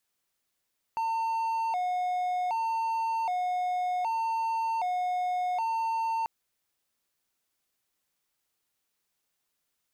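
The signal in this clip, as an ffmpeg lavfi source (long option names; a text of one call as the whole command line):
ffmpeg -f lavfi -i "aevalsrc='0.0596*(1-4*abs(mod((814.5*t+89.5/0.65*(0.5-abs(mod(0.65*t,1)-0.5)))+0.25,1)-0.5))':duration=5.29:sample_rate=44100" out.wav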